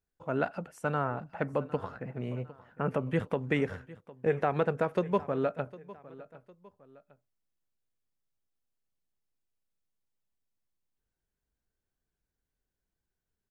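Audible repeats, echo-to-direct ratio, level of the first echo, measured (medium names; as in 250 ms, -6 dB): 2, -18.5 dB, -19.0 dB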